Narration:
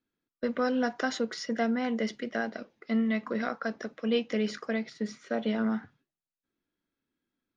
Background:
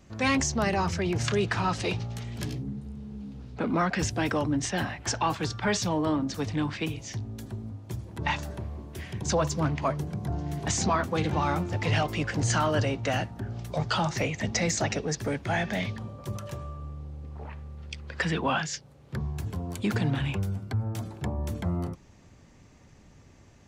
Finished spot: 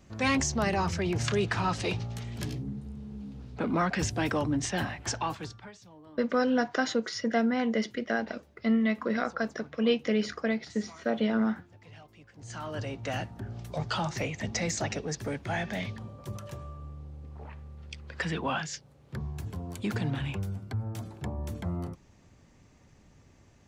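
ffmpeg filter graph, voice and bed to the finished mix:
-filter_complex "[0:a]adelay=5750,volume=1.26[s0];[1:a]volume=10,afade=t=out:st=4.98:d=0.74:silence=0.0630957,afade=t=in:st=12.36:d=0.92:silence=0.0841395[s1];[s0][s1]amix=inputs=2:normalize=0"

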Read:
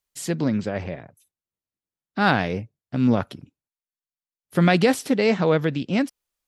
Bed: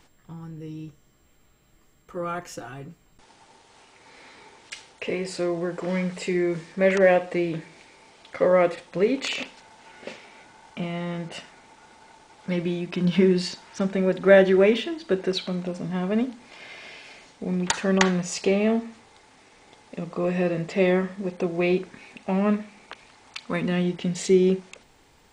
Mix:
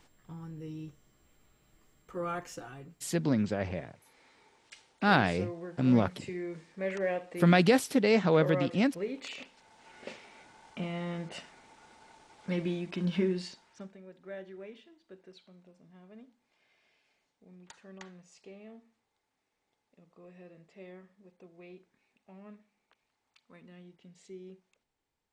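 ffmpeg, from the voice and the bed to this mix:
-filter_complex "[0:a]adelay=2850,volume=0.562[s0];[1:a]volume=1.41,afade=t=out:st=2.35:d=0.84:silence=0.354813,afade=t=in:st=9.49:d=0.5:silence=0.398107,afade=t=out:st=12.71:d=1.27:silence=0.0749894[s1];[s0][s1]amix=inputs=2:normalize=0"

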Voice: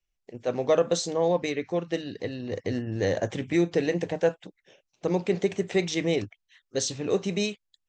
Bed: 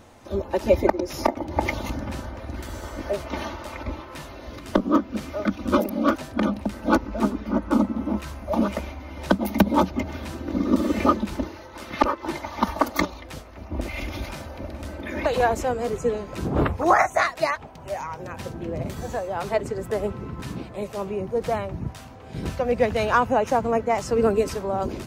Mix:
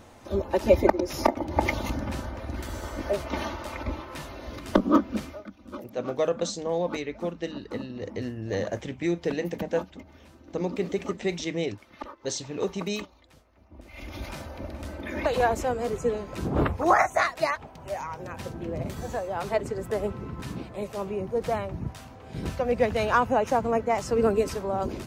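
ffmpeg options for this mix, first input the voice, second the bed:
-filter_complex "[0:a]adelay=5500,volume=0.668[s0];[1:a]volume=6.31,afade=t=out:st=5.16:d=0.27:silence=0.11885,afade=t=in:st=13.86:d=0.49:silence=0.149624[s1];[s0][s1]amix=inputs=2:normalize=0"

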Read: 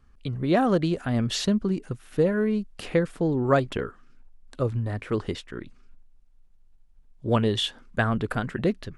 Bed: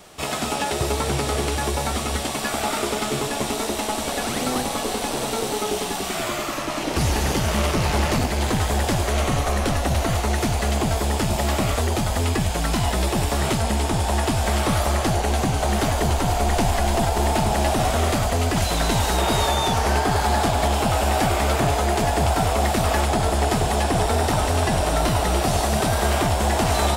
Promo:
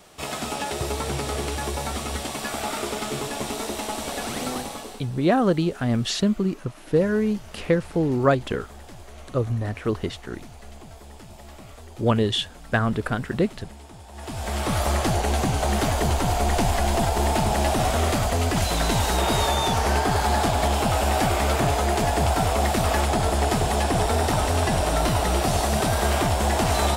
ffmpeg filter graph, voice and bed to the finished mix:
-filter_complex "[0:a]adelay=4750,volume=1.26[s0];[1:a]volume=6.31,afade=t=out:st=4.46:d=0.6:silence=0.133352,afade=t=in:st=14.13:d=0.76:silence=0.0944061[s1];[s0][s1]amix=inputs=2:normalize=0"

